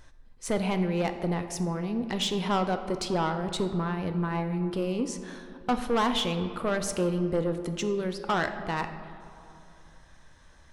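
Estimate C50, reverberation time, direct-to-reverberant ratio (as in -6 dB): 9.5 dB, 2.7 s, 7.5 dB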